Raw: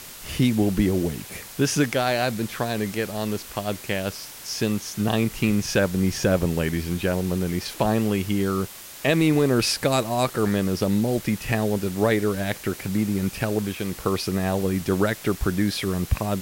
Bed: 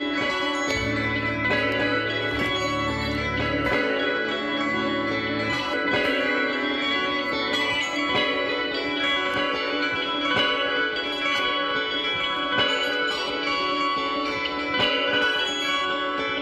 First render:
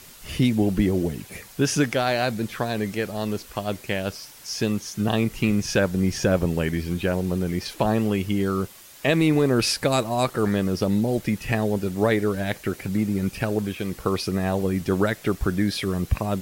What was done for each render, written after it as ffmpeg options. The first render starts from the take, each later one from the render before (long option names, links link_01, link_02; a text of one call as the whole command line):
ffmpeg -i in.wav -af "afftdn=noise_reduction=7:noise_floor=-41" out.wav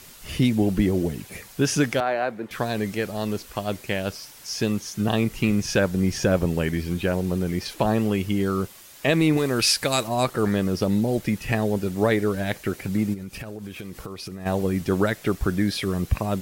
ffmpeg -i in.wav -filter_complex "[0:a]asettb=1/sr,asplit=3[link_01][link_02][link_03];[link_01]atrim=end=2.004[link_04];[link_02]atrim=start=2:end=2.51,asetpts=PTS-STARTPTS,afade=type=in:duration=0.004:curve=qsin,afade=type=out:start_time=0.506:duration=0.004:curve=qsin,acrossover=split=280 2200:gain=0.141 1 0.1[link_05][link_06][link_07];[link_05][link_06][link_07]amix=inputs=3:normalize=0[link_08];[link_03]atrim=start=2.506[link_09];[link_04][link_08]acrossfade=duration=0.004:curve1=hsin:curve2=qsin[link_10];[link_10][link_09]acrossfade=duration=0.004:curve1=qsin:curve2=hsin,asettb=1/sr,asplit=3[link_11][link_12][link_13];[link_11]atrim=end=9.374[link_14];[link_12]atrim=start=9.37:end=10.08,asetpts=PTS-STARTPTS,afade=type=in:duration=0.004:curve=qsin,afade=type=out:start_time=0.706:duration=0.004:curve=qsin,tiltshelf=frequency=1300:gain=-4.5[link_15];[link_13]atrim=start=10.076[link_16];[link_14][link_15]acrossfade=duration=0.004:curve1=hsin:curve2=qsin[link_17];[link_17][link_16]acrossfade=duration=0.004:curve1=qsin:curve2=hsin,asplit=3[link_18][link_19][link_20];[link_18]afade=type=out:start_time=13.13:duration=0.02[link_21];[link_19]acompressor=threshold=-31dB:ratio=12:attack=3.2:release=140:knee=1:detection=peak,afade=type=in:start_time=13.13:duration=0.02,afade=type=out:start_time=14.45:duration=0.02[link_22];[link_20]afade=type=in:start_time=14.45:duration=0.02[link_23];[link_21][link_22][link_23]amix=inputs=3:normalize=0" out.wav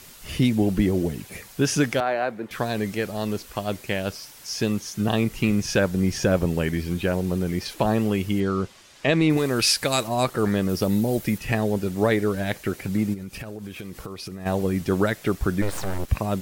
ffmpeg -i in.wav -filter_complex "[0:a]asettb=1/sr,asplit=3[link_01][link_02][link_03];[link_01]atrim=end=8.404[link_04];[link_02]atrim=start=8.4:end=9.3,asetpts=PTS-STARTPTS,afade=type=in:duration=0.004:curve=qsin,afade=type=out:start_time=0.896:duration=0.004:curve=qsin,lowpass=6100[link_05];[link_03]atrim=start=9.296[link_06];[link_04][link_05]acrossfade=duration=0.004:curve1=hsin:curve2=qsin[link_07];[link_07][link_06]acrossfade=duration=0.004:curve1=qsin:curve2=hsin,asettb=1/sr,asplit=3[link_08][link_09][link_10];[link_08]atrim=end=10.694[link_11];[link_09]atrim=start=10.69:end=11.38,asetpts=PTS-STARTPTS,afade=type=in:duration=0.004:curve=qsin,afade=type=out:start_time=0.686:duration=0.004:curve=qsin,highshelf=frequency=11000:gain=11.5[link_12];[link_10]atrim=start=11.376[link_13];[link_11][link_12]acrossfade=duration=0.004:curve1=hsin:curve2=qsin[link_14];[link_14][link_13]acrossfade=duration=0.004:curve1=qsin:curve2=hsin,asplit=3[link_15][link_16][link_17];[link_15]afade=type=out:start_time=15.61:duration=0.02[link_18];[link_16]aeval=exprs='abs(val(0))':channel_layout=same,afade=type=in:start_time=15.61:duration=0.02,afade=type=out:start_time=16.07:duration=0.02[link_19];[link_17]afade=type=in:start_time=16.07:duration=0.02[link_20];[link_18][link_19][link_20]amix=inputs=3:normalize=0" out.wav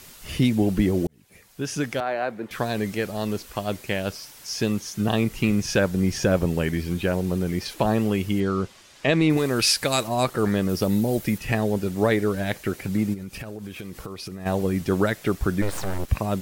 ffmpeg -i in.wav -filter_complex "[0:a]asplit=2[link_01][link_02];[link_01]atrim=end=1.07,asetpts=PTS-STARTPTS,afade=type=out:start_time=1.066:duration=0.004:curve=hsin[link_03];[link_02]atrim=start=1.07,asetpts=PTS-STARTPTS,afade=type=in:duration=1.37[link_04];[link_03][link_04]concat=n=2:v=0:a=1" out.wav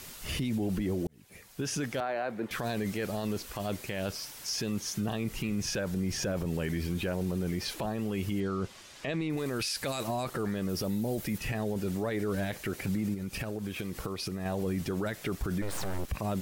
ffmpeg -i in.wav -af "acompressor=threshold=-28dB:ratio=1.5,alimiter=limit=-24dB:level=0:latency=1:release=16" out.wav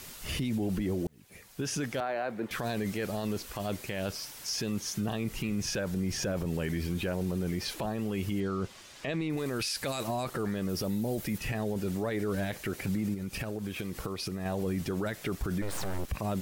ffmpeg -i in.wav -af "acrusher=bits=11:mix=0:aa=0.000001" out.wav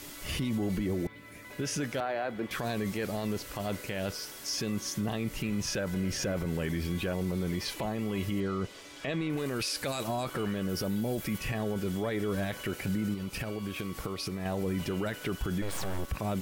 ffmpeg -i in.wav -i bed.wav -filter_complex "[1:a]volume=-25.5dB[link_01];[0:a][link_01]amix=inputs=2:normalize=0" out.wav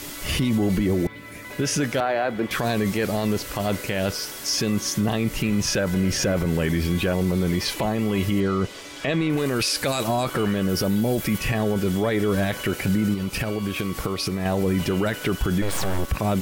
ffmpeg -i in.wav -af "volume=9.5dB" out.wav